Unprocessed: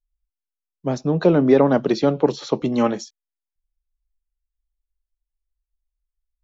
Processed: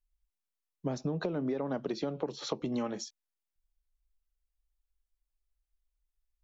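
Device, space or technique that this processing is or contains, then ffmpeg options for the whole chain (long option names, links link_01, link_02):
serial compression, peaks first: -af "acompressor=threshold=-24dB:ratio=6,acompressor=threshold=-32dB:ratio=2,volume=-1.5dB"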